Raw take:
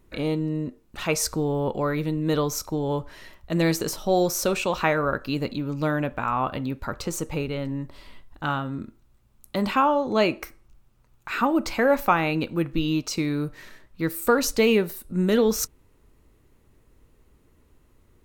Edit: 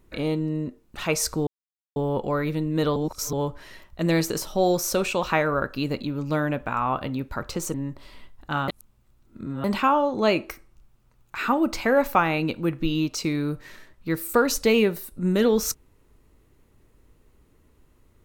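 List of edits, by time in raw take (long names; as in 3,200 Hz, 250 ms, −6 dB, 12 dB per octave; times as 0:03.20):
0:01.47: splice in silence 0.49 s
0:02.47–0:02.84: reverse
0:07.25–0:07.67: remove
0:08.61–0:09.57: reverse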